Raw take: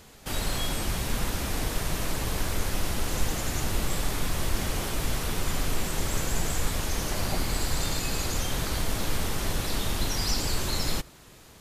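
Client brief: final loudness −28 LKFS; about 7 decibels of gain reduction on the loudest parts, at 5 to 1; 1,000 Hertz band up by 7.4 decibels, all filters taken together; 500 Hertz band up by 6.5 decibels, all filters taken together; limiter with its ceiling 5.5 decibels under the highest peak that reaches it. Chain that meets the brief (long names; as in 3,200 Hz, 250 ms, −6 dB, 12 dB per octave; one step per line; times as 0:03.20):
parametric band 500 Hz +6 dB
parametric band 1,000 Hz +7.5 dB
downward compressor 5 to 1, threshold −27 dBFS
level +6 dB
brickwall limiter −17 dBFS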